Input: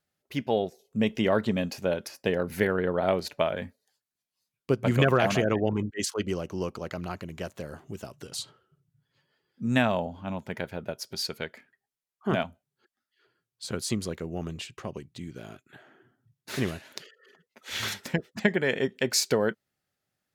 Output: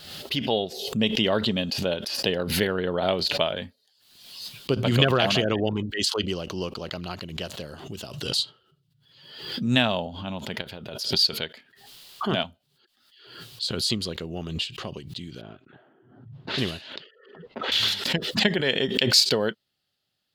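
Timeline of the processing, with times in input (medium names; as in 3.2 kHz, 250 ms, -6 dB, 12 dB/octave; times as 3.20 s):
10.61–11.19 s: compression, threshold -34 dBFS
15.41–17.72 s: level-controlled noise filter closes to 850 Hz, open at -27.5 dBFS
whole clip: high-order bell 3.7 kHz +12 dB 1 oct; swell ahead of each attack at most 61 dB/s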